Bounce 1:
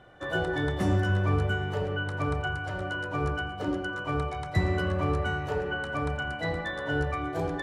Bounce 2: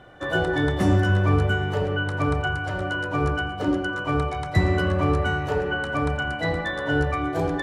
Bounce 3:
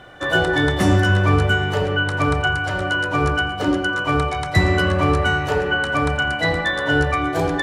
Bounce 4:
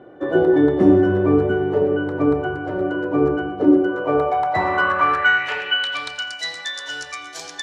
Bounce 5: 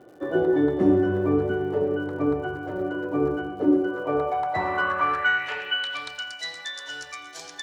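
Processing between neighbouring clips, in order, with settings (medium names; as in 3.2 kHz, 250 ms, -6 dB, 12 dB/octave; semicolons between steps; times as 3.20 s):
peaking EQ 280 Hz +3 dB 0.21 oct; trim +5.5 dB
tilt shelf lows -3.5 dB, about 1.2 kHz; trim +6.5 dB
band-pass sweep 350 Hz -> 5.8 kHz, 3.78–6.40 s; trim +9 dB
crackle 160 per s -42 dBFS; trim -6 dB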